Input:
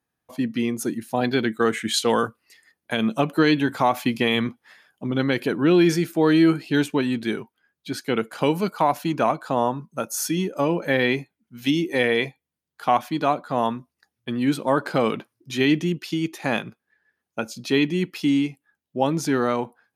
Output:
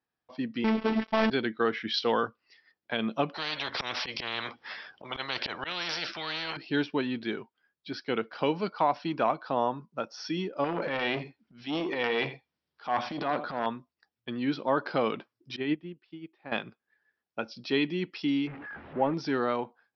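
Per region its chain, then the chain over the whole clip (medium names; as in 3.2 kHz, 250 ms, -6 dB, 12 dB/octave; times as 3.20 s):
0.64–1.30 s: CVSD coder 16 kbps + waveshaping leveller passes 5 + robot voice 220 Hz
3.34–6.57 s: low-pass 11 kHz + slow attack 142 ms + spectrum-flattening compressor 10:1
10.64–13.66 s: transient shaper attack -8 dB, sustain +10 dB + delay 82 ms -15 dB + transformer saturation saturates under 1.2 kHz
15.56–16.52 s: distance through air 320 m + upward expansion 2.5:1, over -28 dBFS
18.47–19.14 s: jump at every zero crossing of -28.5 dBFS + low-pass 2.1 kHz 24 dB/octave
whole clip: Chebyshev low-pass 5.6 kHz, order 8; tone controls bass -5 dB, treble 0 dB; trim -5 dB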